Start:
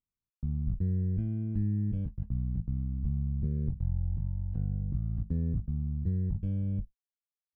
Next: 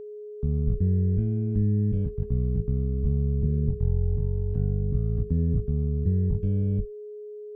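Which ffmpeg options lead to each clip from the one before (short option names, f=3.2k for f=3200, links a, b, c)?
-filter_complex "[0:a]acrossover=split=340[a][b];[b]alimiter=level_in=25.5dB:limit=-24dB:level=0:latency=1:release=13,volume=-25.5dB[c];[a][c]amix=inputs=2:normalize=0,aeval=exprs='val(0)+0.00708*sin(2*PI*420*n/s)':c=same,volume=6.5dB"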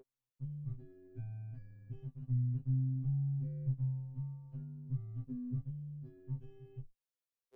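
-af "afftfilt=real='re*2.45*eq(mod(b,6),0)':imag='im*2.45*eq(mod(b,6),0)':win_size=2048:overlap=0.75,volume=-7.5dB"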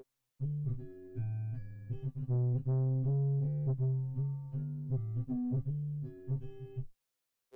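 -af "asoftclip=type=tanh:threshold=-36dB,volume=8dB"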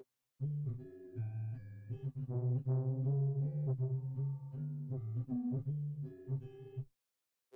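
-af "highpass=f=78:p=1,flanger=delay=4.6:depth=8.9:regen=-44:speed=1.9:shape=triangular,volume=1.5dB"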